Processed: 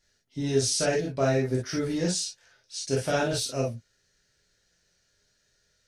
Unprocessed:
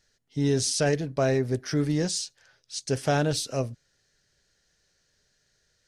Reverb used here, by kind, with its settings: gated-style reverb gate 80 ms flat, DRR -4 dB; trim -5 dB

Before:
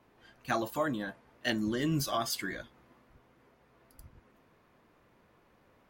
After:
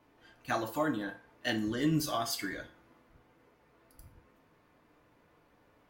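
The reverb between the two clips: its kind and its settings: FDN reverb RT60 0.45 s, low-frequency decay 0.75×, high-frequency decay 0.8×, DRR 4.5 dB; trim -2 dB

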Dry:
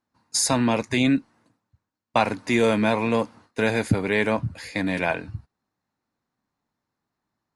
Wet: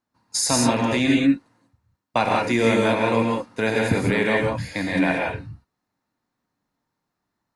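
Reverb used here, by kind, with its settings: gated-style reverb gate 210 ms rising, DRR -1 dB; trim -1 dB

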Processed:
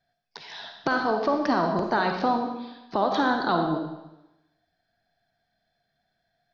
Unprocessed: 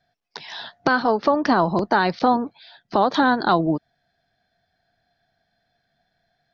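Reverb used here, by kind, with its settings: algorithmic reverb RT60 0.96 s, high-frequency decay 1×, pre-delay 10 ms, DRR 3 dB; trim -6.5 dB

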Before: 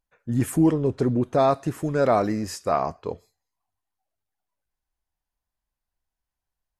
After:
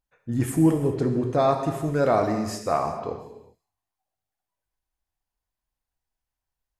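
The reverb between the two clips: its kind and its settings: gated-style reverb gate 430 ms falling, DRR 4 dB; trim -2 dB

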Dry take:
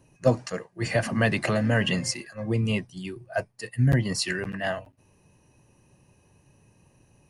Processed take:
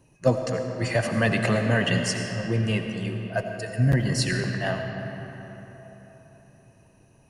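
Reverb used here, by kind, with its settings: algorithmic reverb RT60 4.1 s, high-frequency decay 0.55×, pre-delay 45 ms, DRR 4 dB

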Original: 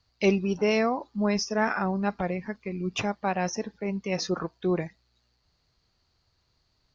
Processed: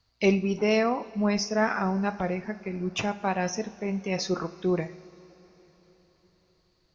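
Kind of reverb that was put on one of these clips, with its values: two-slope reverb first 0.45 s, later 4.6 s, from -18 dB, DRR 10 dB

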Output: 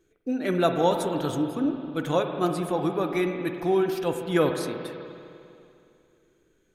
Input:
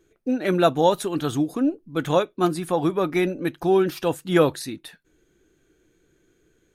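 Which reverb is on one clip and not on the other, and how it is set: spring tank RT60 2.6 s, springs 46/50 ms, chirp 55 ms, DRR 5 dB; trim -4.5 dB

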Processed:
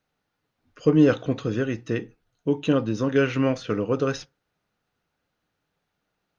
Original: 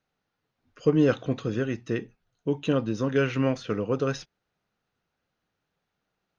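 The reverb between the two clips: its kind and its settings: FDN reverb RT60 0.3 s, low-frequency decay 0.9×, high-frequency decay 0.5×, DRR 15 dB; trim +2.5 dB

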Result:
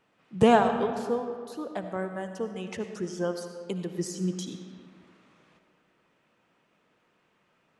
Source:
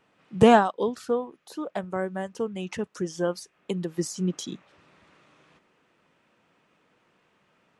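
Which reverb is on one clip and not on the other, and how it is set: algorithmic reverb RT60 2 s, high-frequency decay 0.6×, pre-delay 35 ms, DRR 7 dB; trim -3.5 dB

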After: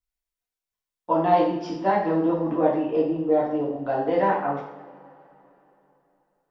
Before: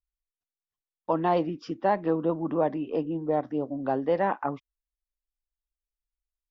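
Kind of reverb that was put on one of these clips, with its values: two-slope reverb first 0.66 s, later 3.4 s, from -22 dB, DRR -5.5 dB; trim -2 dB

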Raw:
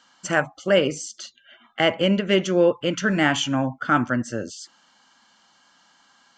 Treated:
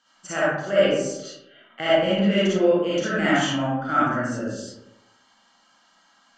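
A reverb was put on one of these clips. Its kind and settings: algorithmic reverb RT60 0.92 s, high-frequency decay 0.45×, pre-delay 15 ms, DRR -9.5 dB; trim -10.5 dB

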